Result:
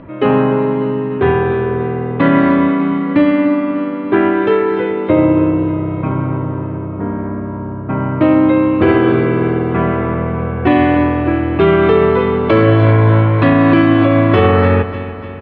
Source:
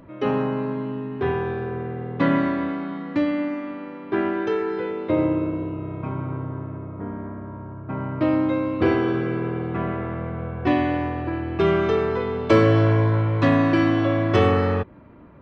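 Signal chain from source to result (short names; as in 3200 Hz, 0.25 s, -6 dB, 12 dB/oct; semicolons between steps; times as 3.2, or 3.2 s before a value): LPF 3500 Hz 24 dB/oct; feedback echo 0.296 s, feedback 55%, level -14 dB; maximiser +12 dB; gain -1 dB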